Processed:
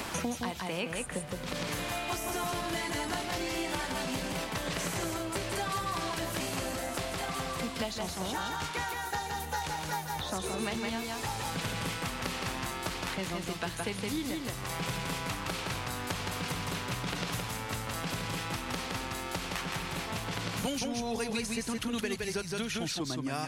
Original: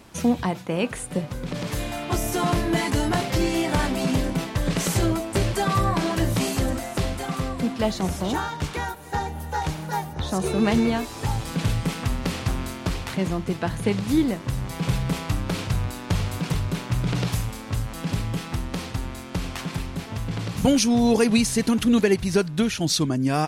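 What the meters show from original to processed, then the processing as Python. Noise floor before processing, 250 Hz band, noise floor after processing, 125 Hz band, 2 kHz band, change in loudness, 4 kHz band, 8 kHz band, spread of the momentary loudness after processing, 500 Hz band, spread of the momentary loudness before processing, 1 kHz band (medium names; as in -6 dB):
-37 dBFS, -13.5 dB, -39 dBFS, -13.5 dB, -4.0 dB, -9.5 dB, -4.5 dB, -5.5 dB, 2 LU, -10.0 dB, 9 LU, -6.0 dB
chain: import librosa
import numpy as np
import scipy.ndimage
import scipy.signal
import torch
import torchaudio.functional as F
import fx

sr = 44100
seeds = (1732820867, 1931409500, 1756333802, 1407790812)

y = fx.low_shelf(x, sr, hz=460.0, db=-12.0)
y = y + 10.0 ** (-4.0 / 20.0) * np.pad(y, (int(166 * sr / 1000.0), 0))[:len(y)]
y = fx.band_squash(y, sr, depth_pct=100)
y = y * 10.0 ** (-6.5 / 20.0)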